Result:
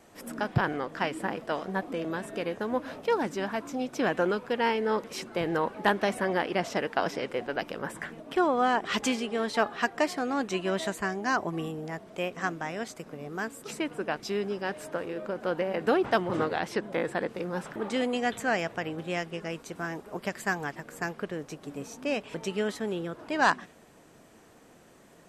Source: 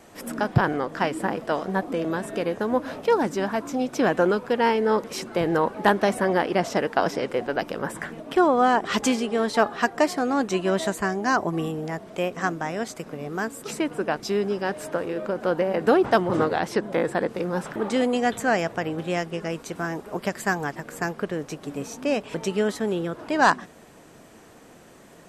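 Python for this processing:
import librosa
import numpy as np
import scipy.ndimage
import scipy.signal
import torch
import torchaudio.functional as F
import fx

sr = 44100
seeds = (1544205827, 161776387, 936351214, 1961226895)

y = fx.dynamic_eq(x, sr, hz=2600.0, q=0.93, threshold_db=-39.0, ratio=4.0, max_db=5)
y = y * 10.0 ** (-6.5 / 20.0)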